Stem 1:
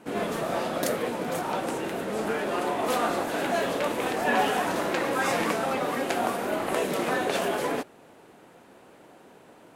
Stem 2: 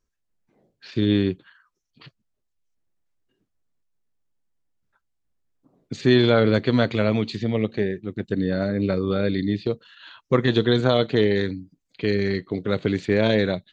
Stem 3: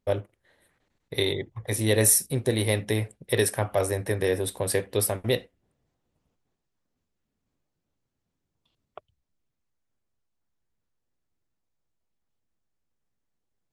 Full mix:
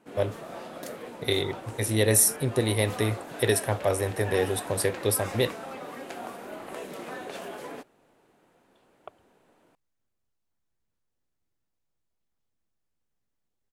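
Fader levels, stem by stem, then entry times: -11.5 dB, off, -0.5 dB; 0.00 s, off, 0.10 s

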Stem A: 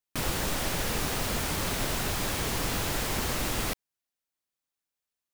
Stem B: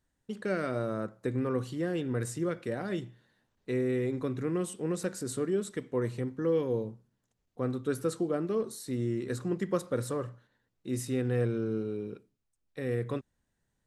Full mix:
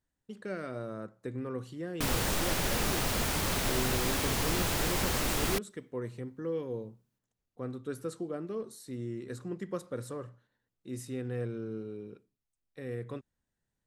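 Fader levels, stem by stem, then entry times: -0.5, -6.5 dB; 1.85, 0.00 s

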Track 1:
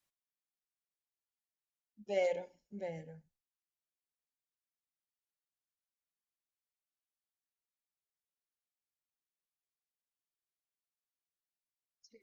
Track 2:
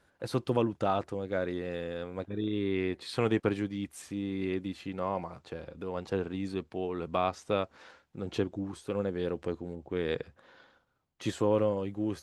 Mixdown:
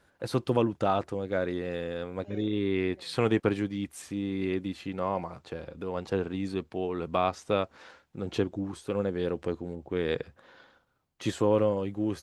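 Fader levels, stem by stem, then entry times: -16.5, +2.5 dB; 0.15, 0.00 s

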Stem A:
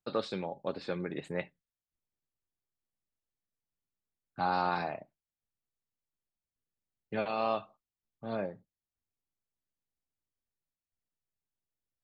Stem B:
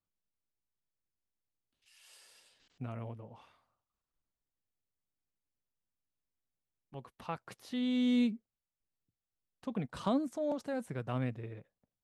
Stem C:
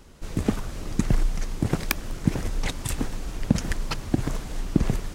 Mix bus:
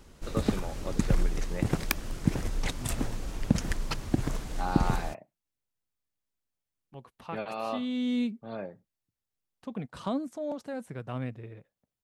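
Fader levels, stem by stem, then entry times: -3.0, 0.0, -3.5 dB; 0.20, 0.00, 0.00 s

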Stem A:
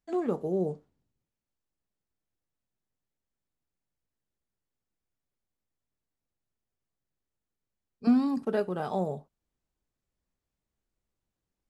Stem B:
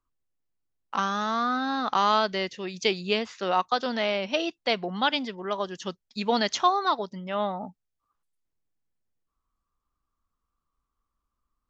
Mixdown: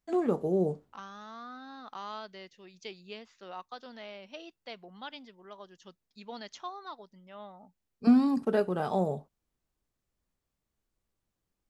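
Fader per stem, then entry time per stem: +1.5, -18.5 dB; 0.00, 0.00 s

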